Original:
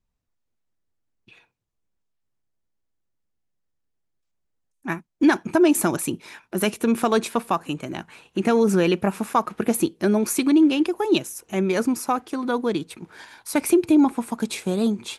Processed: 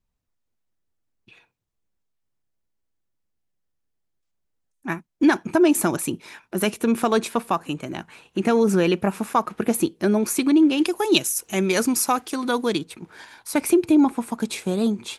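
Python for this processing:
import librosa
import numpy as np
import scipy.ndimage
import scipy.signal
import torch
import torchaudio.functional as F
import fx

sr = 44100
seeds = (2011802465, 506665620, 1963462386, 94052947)

y = fx.high_shelf(x, sr, hz=2500.0, db=11.5, at=(10.77, 12.77), fade=0.02)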